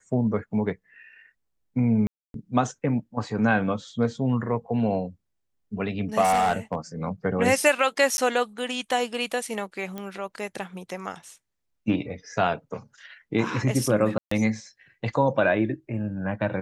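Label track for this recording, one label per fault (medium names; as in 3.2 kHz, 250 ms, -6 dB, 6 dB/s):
2.070000	2.340000	dropout 272 ms
6.210000	6.750000	clipped -17 dBFS
8.170000	8.180000	dropout
9.980000	9.980000	pop -20 dBFS
14.180000	14.310000	dropout 134 ms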